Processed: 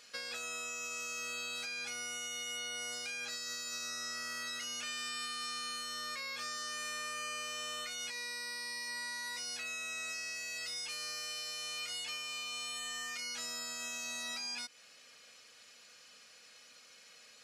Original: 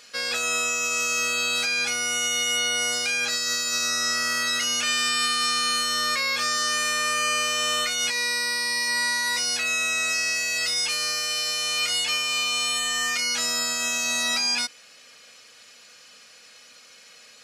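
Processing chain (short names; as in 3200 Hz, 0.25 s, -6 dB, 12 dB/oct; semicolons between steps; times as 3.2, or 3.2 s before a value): compressor, threshold -30 dBFS, peak gain reduction 8.5 dB; gain -8.5 dB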